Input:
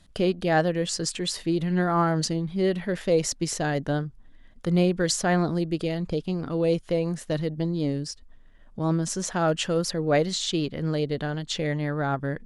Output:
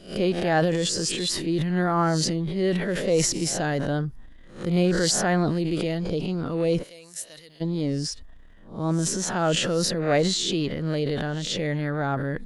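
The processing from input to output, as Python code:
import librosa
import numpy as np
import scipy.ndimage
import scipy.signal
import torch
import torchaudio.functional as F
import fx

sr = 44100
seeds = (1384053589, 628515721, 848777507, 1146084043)

y = fx.spec_swells(x, sr, rise_s=0.37)
y = fx.transient(y, sr, attack_db=-2, sustain_db=7)
y = fx.pre_emphasis(y, sr, coefficient=0.97, at=(6.82, 7.6), fade=0.02)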